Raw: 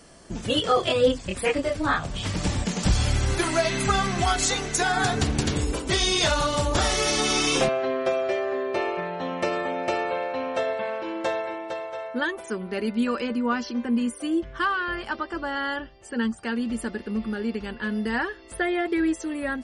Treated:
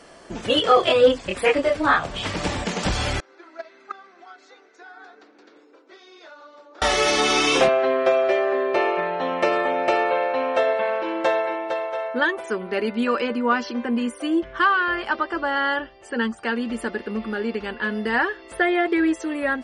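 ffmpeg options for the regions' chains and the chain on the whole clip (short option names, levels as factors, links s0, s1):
-filter_complex "[0:a]asettb=1/sr,asplit=3[s0][s1][s2];[s0]atrim=end=3.204[s3];[s1]atrim=start=3.2:end=6.82,asetpts=PTS-STARTPTS,afade=t=in:d=0.004:c=qsin,afade=t=out:st=3.616:d=0.004:c=qsin,agate=range=0.0355:threshold=0.141:ratio=16:release=100:detection=peak,highpass=f=270:w=0.5412,highpass=f=270:w=1.3066,equalizer=f=320:t=q:w=4:g=6,equalizer=f=510:t=q:w=4:g=4,equalizer=f=1400:t=q:w=4:g=6,equalizer=f=3000:t=q:w=4:g=-7,lowpass=f=5600:w=0.5412,lowpass=f=5600:w=1.3066[s4];[s2]atrim=start=6.816[s5];[s3][s4]acrossfade=d=0.004:c1=hsin:c2=qsin[s6];[s6][s5]acrossfade=d=0.004:c1=qsin:c2=hsin,highshelf=f=8200:g=-7.5,acontrast=75,bass=f=250:g=-12,treble=f=4000:g=-6"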